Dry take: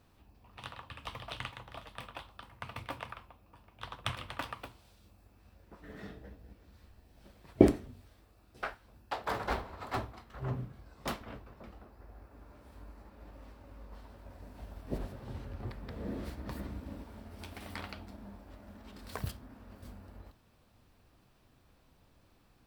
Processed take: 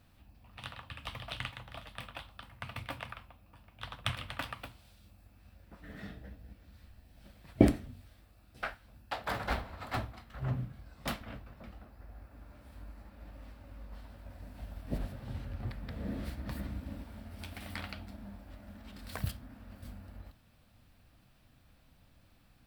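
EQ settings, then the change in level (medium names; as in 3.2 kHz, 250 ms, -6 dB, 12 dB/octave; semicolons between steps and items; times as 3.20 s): fifteen-band graphic EQ 400 Hz -10 dB, 1 kHz -6 dB, 6.3 kHz -4 dB; +3.0 dB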